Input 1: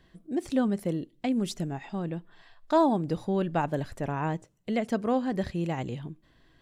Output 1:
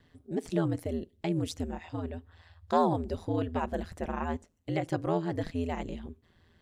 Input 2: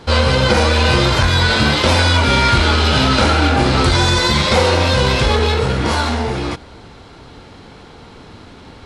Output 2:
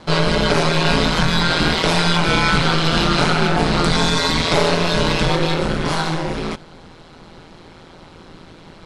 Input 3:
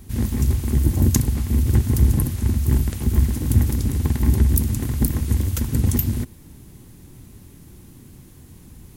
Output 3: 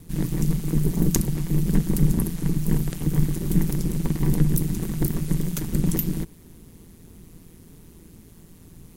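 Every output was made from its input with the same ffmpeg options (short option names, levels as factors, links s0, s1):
-af "aeval=exprs='val(0)*sin(2*PI*83*n/s)':c=same"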